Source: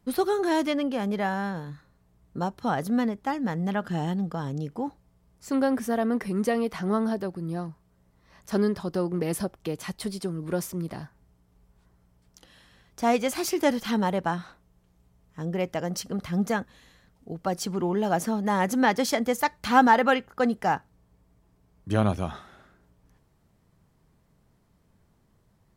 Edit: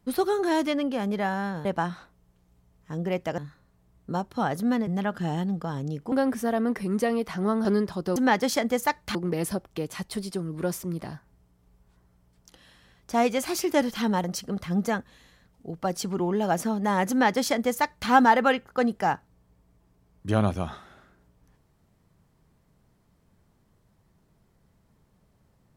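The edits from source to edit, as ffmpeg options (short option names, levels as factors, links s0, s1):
-filter_complex "[0:a]asplit=9[s0][s1][s2][s3][s4][s5][s6][s7][s8];[s0]atrim=end=1.652[s9];[s1]atrim=start=14.128:end=15.862[s10];[s2]atrim=start=1.648:end=3.142[s11];[s3]atrim=start=3.568:end=4.822[s12];[s4]atrim=start=5.568:end=7.102[s13];[s5]atrim=start=8.528:end=9.042[s14];[s6]atrim=start=18.718:end=19.712[s15];[s7]atrim=start=9.038:end=14.132[s16];[s8]atrim=start=15.858[s17];[s9][s10]acrossfade=d=0.004:c1=hsin:c2=hsin[s18];[s18][s11]acrossfade=d=0.004:c1=hsin:c2=hsin[s19];[s19][s12]acrossfade=d=0.004:c1=hsin:c2=hsin[s20];[s20][s13]acrossfade=d=0.004:c1=hsin:c2=hsin[s21];[s21][s14]acrossfade=d=0.004:c1=hsin:c2=hsin[s22];[s22][s15]acrossfade=d=0.004:c1=hsin:c2=hsin[s23];[s23][s16]acrossfade=d=0.004:c1=hsin:c2=hsin[s24];[s24][s17]acrossfade=d=0.004:c1=hsin:c2=hsin"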